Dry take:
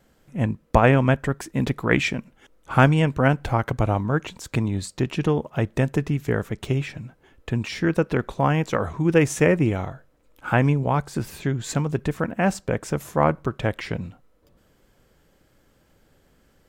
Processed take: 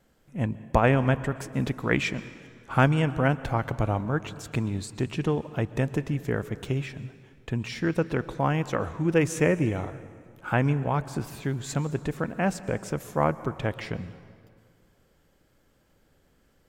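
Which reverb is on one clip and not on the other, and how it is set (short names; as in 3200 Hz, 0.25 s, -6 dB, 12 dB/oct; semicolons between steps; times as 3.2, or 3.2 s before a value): plate-style reverb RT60 2.1 s, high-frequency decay 0.75×, pre-delay 0.105 s, DRR 15.5 dB; gain -4.5 dB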